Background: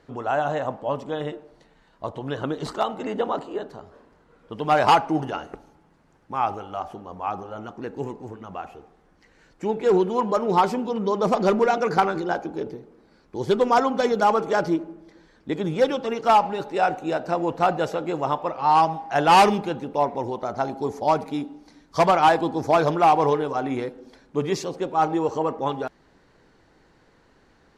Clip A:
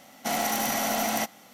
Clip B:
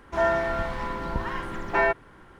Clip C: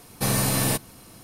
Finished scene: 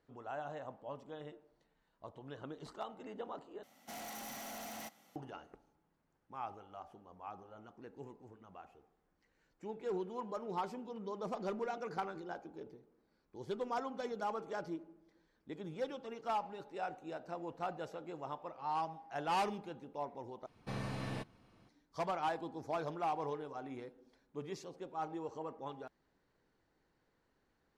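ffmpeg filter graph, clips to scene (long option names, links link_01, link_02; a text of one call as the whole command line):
ffmpeg -i bed.wav -i cue0.wav -i cue1.wav -i cue2.wav -filter_complex "[0:a]volume=-19.5dB[link_01];[1:a]asoftclip=type=tanh:threshold=-28.5dB[link_02];[3:a]lowpass=3000[link_03];[link_01]asplit=3[link_04][link_05][link_06];[link_04]atrim=end=3.634[link_07];[link_02]atrim=end=1.53,asetpts=PTS-STARTPTS,volume=-14.5dB[link_08];[link_05]atrim=start=5.156:end=20.464[link_09];[link_03]atrim=end=1.23,asetpts=PTS-STARTPTS,volume=-16dB[link_10];[link_06]atrim=start=21.686[link_11];[link_07][link_08]acrossfade=duration=0.004:curve1=hsin:curve2=hsin[link_12];[link_12][link_09]acrossfade=duration=0.004:curve1=hsin:curve2=hsin[link_13];[link_13][link_10]acrossfade=duration=0.004:curve1=hsin:curve2=hsin[link_14];[link_14][link_11]acrossfade=duration=0.004:curve1=hsin:curve2=hsin" out.wav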